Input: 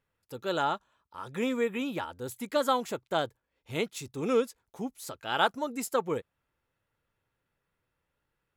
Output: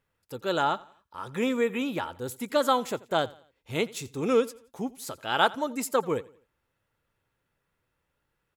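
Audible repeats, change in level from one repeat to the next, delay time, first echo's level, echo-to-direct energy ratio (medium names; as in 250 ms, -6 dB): 2, -8.0 dB, 86 ms, -21.5 dB, -21.0 dB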